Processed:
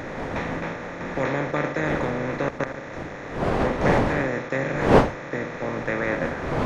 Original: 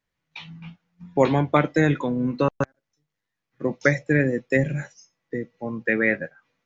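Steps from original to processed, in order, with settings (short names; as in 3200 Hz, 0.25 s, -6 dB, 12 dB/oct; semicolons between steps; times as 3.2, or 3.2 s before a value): per-bin compression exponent 0.2; wind noise 630 Hz -15 dBFS; gain -12 dB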